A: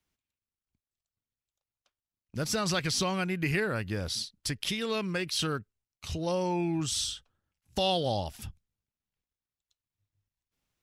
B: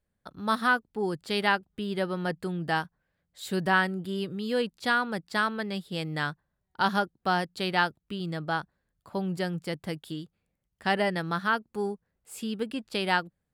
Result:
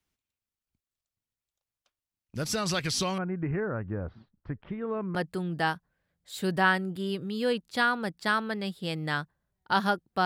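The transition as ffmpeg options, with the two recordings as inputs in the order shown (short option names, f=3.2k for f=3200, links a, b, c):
-filter_complex "[0:a]asettb=1/sr,asplit=3[a][b][c];[a]atrim=end=3.184[d];[b]atrim=start=3.18:end=5.15,asetpts=PTS-STARTPTS,afade=t=in:d=0.004:c=qsin,afade=t=out:st=1.966:d=0.004:c=qsin,lowpass=f=1.4k:w=0.5412,lowpass=f=1.4k:w=1.3066[e];[c]atrim=start=5.146[f];[d][e]acrossfade=d=0.004:c1=hsin:c2=qsin[g];[g][f]acrossfade=d=0.004:c1=qsin:c2=hsin,apad=whole_dur=10.25,atrim=end=10.25,atrim=end=5.152[h];[1:a]atrim=start=2.238:end=7.34[i];[h][i]acrossfade=d=0.004:c1=hsin:c2=hsin"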